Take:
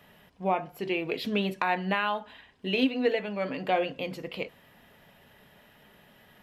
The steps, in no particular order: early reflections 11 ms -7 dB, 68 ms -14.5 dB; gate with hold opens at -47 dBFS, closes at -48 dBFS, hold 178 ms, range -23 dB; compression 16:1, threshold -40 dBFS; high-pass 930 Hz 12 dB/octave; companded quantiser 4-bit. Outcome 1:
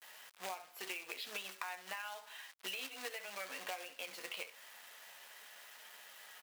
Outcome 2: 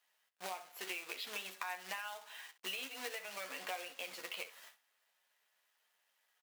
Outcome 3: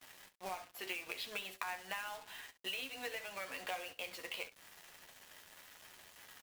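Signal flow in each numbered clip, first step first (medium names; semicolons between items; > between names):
early reflections > gate with hold > companded quantiser > high-pass > compression; companded quantiser > gate with hold > high-pass > compression > early reflections; high-pass > compression > companded quantiser > early reflections > gate with hold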